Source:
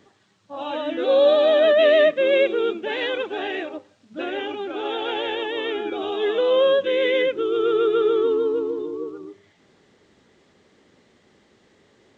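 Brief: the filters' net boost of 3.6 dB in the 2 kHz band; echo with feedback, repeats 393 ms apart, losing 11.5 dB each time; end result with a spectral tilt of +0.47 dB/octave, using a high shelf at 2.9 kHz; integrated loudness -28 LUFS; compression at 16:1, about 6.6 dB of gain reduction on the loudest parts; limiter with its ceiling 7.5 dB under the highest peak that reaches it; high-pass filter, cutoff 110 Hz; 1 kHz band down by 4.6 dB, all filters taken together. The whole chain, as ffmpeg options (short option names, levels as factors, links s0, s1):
-af "highpass=110,equalizer=f=1000:t=o:g=-9,equalizer=f=2000:t=o:g=3.5,highshelf=f=2900:g=8,acompressor=threshold=0.1:ratio=16,alimiter=limit=0.0944:level=0:latency=1,aecho=1:1:393|786|1179:0.266|0.0718|0.0194,volume=1.06"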